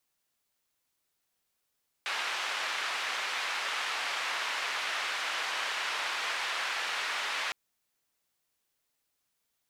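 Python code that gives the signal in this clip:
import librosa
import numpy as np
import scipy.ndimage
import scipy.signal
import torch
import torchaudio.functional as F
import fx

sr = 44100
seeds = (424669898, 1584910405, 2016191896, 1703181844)

y = fx.band_noise(sr, seeds[0], length_s=5.46, low_hz=930.0, high_hz=2600.0, level_db=-33.5)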